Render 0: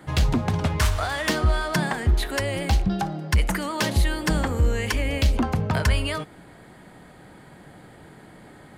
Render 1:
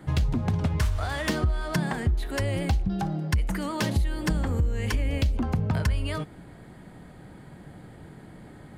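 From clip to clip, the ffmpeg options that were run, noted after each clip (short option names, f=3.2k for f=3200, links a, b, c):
-af "lowshelf=f=290:g=10,acompressor=threshold=-17dB:ratio=6,volume=-4.5dB"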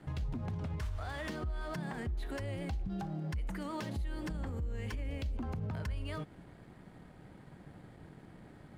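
-af "highshelf=f=4.5k:g=-6,alimiter=level_in=1dB:limit=-24dB:level=0:latency=1:release=104,volume=-1dB,aeval=exprs='sgn(val(0))*max(abs(val(0))-0.0015,0)':c=same,volume=-5.5dB"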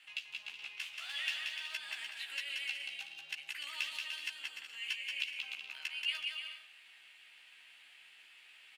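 -filter_complex "[0:a]highpass=f=2.7k:t=q:w=6.7,asplit=2[a][b];[b]adelay=14,volume=-3.5dB[c];[a][c]amix=inputs=2:normalize=0,asplit=2[d][e];[e]aecho=0:1:180|297|373|422.5|454.6:0.631|0.398|0.251|0.158|0.1[f];[d][f]amix=inputs=2:normalize=0,volume=1dB"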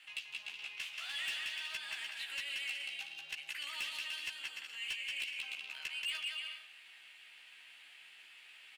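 -af "asoftclip=type=tanh:threshold=-35dB,volume=2dB"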